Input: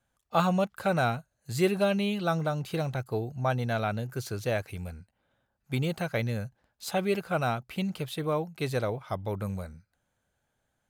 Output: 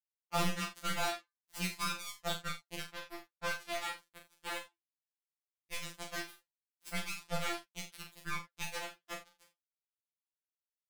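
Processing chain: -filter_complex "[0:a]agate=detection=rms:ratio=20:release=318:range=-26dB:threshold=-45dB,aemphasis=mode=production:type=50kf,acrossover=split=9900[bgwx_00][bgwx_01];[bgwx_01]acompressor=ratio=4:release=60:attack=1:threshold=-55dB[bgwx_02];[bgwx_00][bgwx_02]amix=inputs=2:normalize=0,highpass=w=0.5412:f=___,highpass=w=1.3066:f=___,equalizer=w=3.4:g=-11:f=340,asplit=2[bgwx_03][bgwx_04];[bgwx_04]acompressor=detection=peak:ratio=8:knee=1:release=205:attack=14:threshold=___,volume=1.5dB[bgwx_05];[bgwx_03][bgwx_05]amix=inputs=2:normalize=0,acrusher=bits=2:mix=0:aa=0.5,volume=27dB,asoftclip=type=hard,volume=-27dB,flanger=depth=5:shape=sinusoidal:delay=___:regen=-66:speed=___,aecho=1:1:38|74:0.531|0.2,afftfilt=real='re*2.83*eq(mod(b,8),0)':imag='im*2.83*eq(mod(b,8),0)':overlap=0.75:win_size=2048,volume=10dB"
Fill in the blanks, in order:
110, 110, -41dB, 6.3, 1.2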